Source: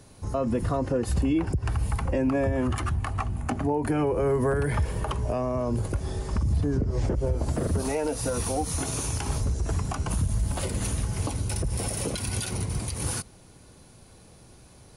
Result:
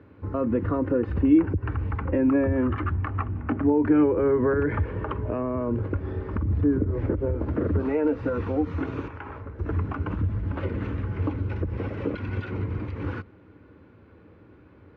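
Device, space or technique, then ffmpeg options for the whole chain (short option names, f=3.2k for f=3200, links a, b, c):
bass cabinet: -filter_complex "[0:a]asettb=1/sr,asplit=3[a][b][c];[a]atrim=end=9.084[d];[b]atrim=start=9.08:end=9.59,asetpts=PTS-STARTPTS,afade=t=in:d=0.004:c=qsin,afade=t=out:st=0.506:d=0.004:c=qsin,acrossover=split=540 2500:gain=0.251 1 0.251[e][f][g];[e][f][g]amix=inputs=3:normalize=0[h];[c]atrim=start=9.586[i];[d][h]acrossfade=d=0.004:c1=hsin:c2=qsin[j];[j][i]acrossfade=d=0.004:c1=qsin:c2=hsin,highpass=79,equalizer=f=90:t=q:w=4:g=7,equalizer=f=140:t=q:w=4:g=-7,equalizer=f=300:t=q:w=4:g=9,equalizer=f=460:t=q:w=4:g=4,equalizer=f=720:t=q:w=4:g=-9,equalizer=f=1.4k:t=q:w=4:g=4,lowpass=f=2.3k:w=0.5412,lowpass=f=2.3k:w=1.3066"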